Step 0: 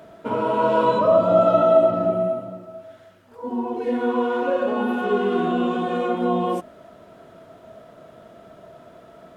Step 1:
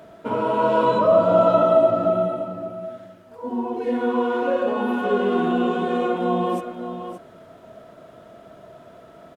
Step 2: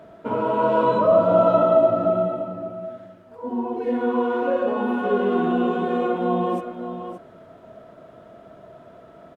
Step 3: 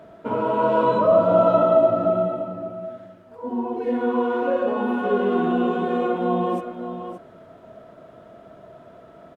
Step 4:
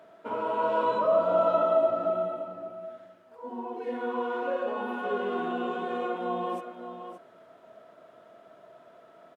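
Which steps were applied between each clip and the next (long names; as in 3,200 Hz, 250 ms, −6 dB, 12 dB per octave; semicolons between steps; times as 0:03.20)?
single-tap delay 572 ms −10 dB
high-shelf EQ 3,200 Hz −9 dB
no processing that can be heard
high-pass filter 660 Hz 6 dB per octave; level −4 dB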